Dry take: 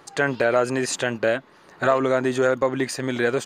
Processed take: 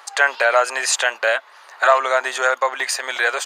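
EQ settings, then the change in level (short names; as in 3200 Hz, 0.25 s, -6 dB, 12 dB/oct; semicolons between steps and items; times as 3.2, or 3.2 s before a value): HPF 700 Hz 24 dB/oct; +8.5 dB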